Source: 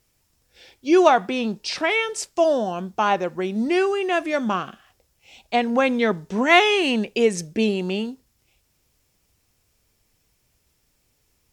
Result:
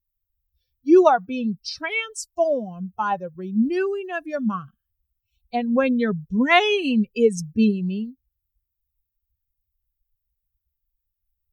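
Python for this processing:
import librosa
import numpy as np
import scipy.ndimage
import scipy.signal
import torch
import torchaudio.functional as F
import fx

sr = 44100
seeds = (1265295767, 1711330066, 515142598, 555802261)

y = fx.bin_expand(x, sr, power=2.0)
y = fx.low_shelf(y, sr, hz=300.0, db=10.0)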